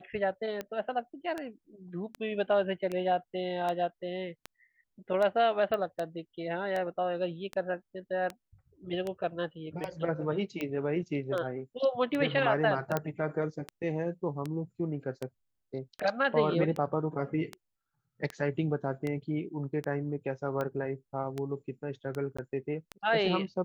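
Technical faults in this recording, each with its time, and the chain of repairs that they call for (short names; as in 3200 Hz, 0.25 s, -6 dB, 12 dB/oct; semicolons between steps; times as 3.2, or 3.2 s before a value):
tick 78 rpm -21 dBFS
5.74 pop -21 dBFS
12.97 pop -15 dBFS
22.37–22.39 gap 15 ms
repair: de-click; interpolate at 22.37, 15 ms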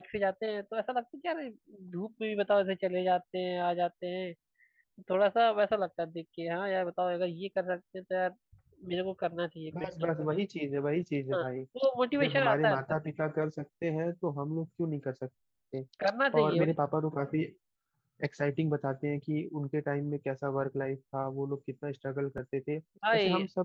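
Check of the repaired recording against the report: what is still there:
5.74 pop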